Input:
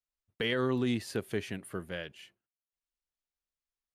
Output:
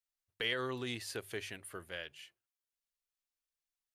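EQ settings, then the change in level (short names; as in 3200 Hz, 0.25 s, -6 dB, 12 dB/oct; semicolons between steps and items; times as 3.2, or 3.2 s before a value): tilt shelf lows -3.5 dB, about 1400 Hz; bell 200 Hz -10.5 dB 1 oct; notches 50/100/150 Hz; -3.0 dB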